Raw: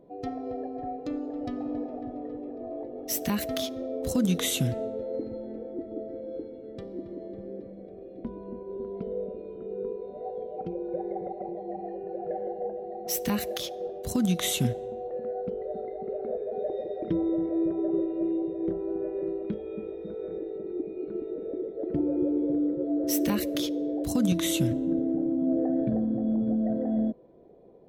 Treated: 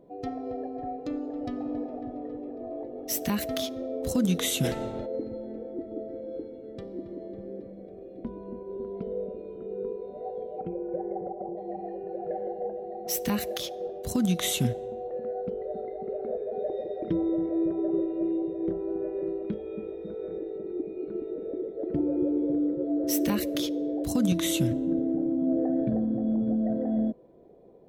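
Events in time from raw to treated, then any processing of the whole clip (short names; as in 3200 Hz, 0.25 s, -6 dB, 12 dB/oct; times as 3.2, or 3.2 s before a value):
4.63–5.05 spectral limiter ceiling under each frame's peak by 20 dB
10.61–11.56 LPF 2800 Hz -> 1200 Hz 24 dB/oct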